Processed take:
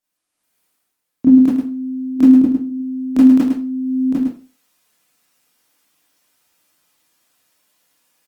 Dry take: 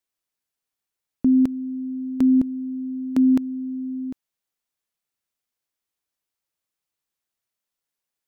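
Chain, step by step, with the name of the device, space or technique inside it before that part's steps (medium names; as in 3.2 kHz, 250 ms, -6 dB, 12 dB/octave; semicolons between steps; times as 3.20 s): 2.16–2.67 s: peaking EQ 320 Hz +5 dB 0.36 oct; delay 106 ms -6.5 dB; far-field microphone of a smart speaker (reverberation RT60 0.35 s, pre-delay 22 ms, DRR -9 dB; high-pass 110 Hz 12 dB/octave; level rider gain up to 13.5 dB; trim -1 dB; Opus 24 kbps 48 kHz)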